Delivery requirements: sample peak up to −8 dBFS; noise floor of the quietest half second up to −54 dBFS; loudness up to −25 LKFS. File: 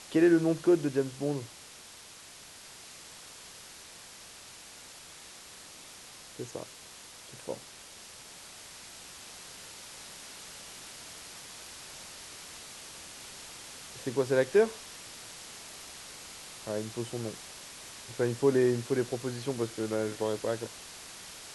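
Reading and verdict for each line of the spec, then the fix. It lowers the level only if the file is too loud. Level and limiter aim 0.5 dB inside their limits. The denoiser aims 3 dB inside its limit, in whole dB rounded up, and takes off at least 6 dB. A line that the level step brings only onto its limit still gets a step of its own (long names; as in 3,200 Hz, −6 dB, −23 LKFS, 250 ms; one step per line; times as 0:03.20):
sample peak −13.0 dBFS: in spec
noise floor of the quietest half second −50 dBFS: out of spec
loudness −33.0 LKFS: in spec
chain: broadband denoise 7 dB, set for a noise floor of −50 dBFS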